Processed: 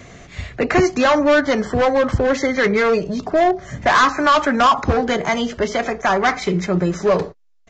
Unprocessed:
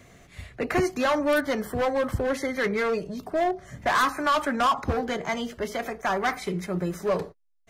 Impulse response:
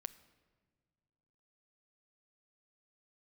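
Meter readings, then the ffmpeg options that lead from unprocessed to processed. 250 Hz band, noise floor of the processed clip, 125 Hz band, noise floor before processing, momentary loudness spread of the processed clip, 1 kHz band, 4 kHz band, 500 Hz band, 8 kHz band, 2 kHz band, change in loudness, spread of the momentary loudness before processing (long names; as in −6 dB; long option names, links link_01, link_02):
+9.5 dB, −43 dBFS, +9.5 dB, −55 dBFS, 7 LU, +9.0 dB, +9.0 dB, +9.0 dB, +7.5 dB, +9.0 dB, +9.0 dB, 8 LU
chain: -filter_complex "[0:a]aresample=16000,aresample=44100,asplit=2[link_01][link_02];[link_02]alimiter=limit=-22.5dB:level=0:latency=1:release=309,volume=1dB[link_03];[link_01][link_03]amix=inputs=2:normalize=0,volume=5dB"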